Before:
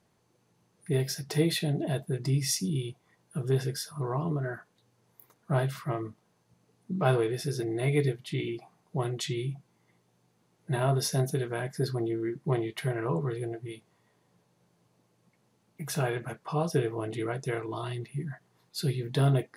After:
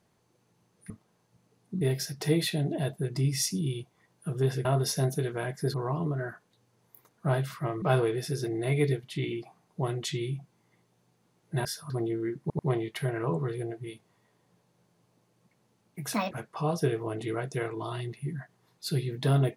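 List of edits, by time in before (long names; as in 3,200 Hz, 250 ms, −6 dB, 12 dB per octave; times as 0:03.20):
0:03.74–0:03.99: swap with 0:10.81–0:11.90
0:06.07–0:06.98: move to 0:00.90
0:12.41: stutter 0.09 s, 3 plays
0:15.96–0:16.23: play speed 157%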